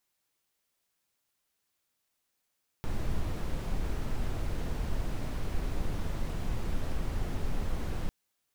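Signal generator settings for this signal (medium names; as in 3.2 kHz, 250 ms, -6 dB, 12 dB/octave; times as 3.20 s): noise brown, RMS -30 dBFS 5.25 s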